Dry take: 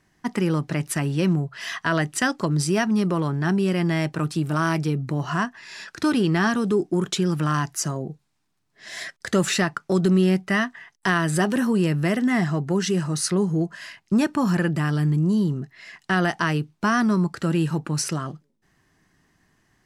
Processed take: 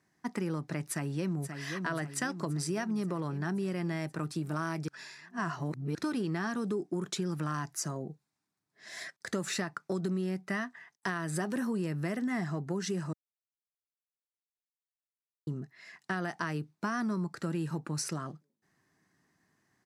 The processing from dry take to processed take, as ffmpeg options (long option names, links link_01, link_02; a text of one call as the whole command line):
ffmpeg -i in.wav -filter_complex "[0:a]asplit=2[link_01][link_02];[link_02]afade=type=in:start_time=0.87:duration=0.01,afade=type=out:start_time=1.61:duration=0.01,aecho=0:1:530|1060|1590|2120|2650|3180|3710|4240|4770:0.354813|0.230629|0.149909|0.0974406|0.0633364|0.0411687|0.0267596|0.0173938|0.0113059[link_03];[link_01][link_03]amix=inputs=2:normalize=0,asplit=5[link_04][link_05][link_06][link_07][link_08];[link_04]atrim=end=4.882[link_09];[link_05]atrim=start=4.878:end=5.952,asetpts=PTS-STARTPTS,areverse[link_10];[link_06]atrim=start=5.948:end=13.13,asetpts=PTS-STARTPTS,afade=type=out:start_time=7.178:duration=0.004:curve=hsin[link_11];[link_07]atrim=start=13.13:end=15.47,asetpts=PTS-STARTPTS,volume=0[link_12];[link_08]atrim=start=15.47,asetpts=PTS-STARTPTS,afade=type=in:duration=0.004:curve=hsin[link_13];[link_09][link_10]acrossfade=duration=0.004:curve1=hsin:curve2=hsin[link_14];[link_11][link_12][link_13]concat=n=3:v=0:a=1[link_15];[link_14][link_15]acrossfade=duration=0.004:curve1=hsin:curve2=hsin,highpass=120,equalizer=frequency=3000:width=3.7:gain=-6.5,acompressor=threshold=-21dB:ratio=6,volume=-8dB" out.wav